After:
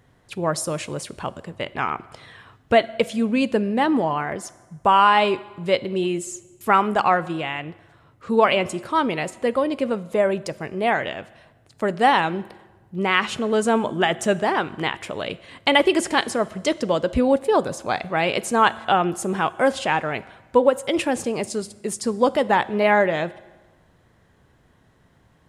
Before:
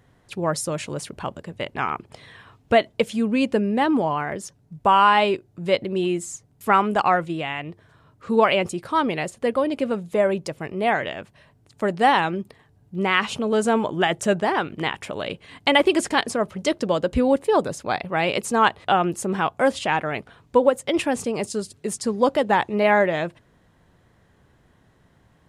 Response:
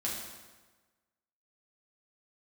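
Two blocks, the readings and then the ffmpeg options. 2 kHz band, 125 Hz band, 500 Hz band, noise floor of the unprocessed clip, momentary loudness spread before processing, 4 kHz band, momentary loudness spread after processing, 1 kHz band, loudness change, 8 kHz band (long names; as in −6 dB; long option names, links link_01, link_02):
+0.5 dB, −0.5 dB, +0.5 dB, −60 dBFS, 13 LU, +1.0 dB, 13 LU, +0.5 dB, +0.5 dB, +1.0 dB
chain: -filter_complex "[0:a]asplit=2[link_01][link_02];[link_02]highpass=290[link_03];[1:a]atrim=start_sample=2205[link_04];[link_03][link_04]afir=irnorm=-1:irlink=0,volume=-18.5dB[link_05];[link_01][link_05]amix=inputs=2:normalize=0"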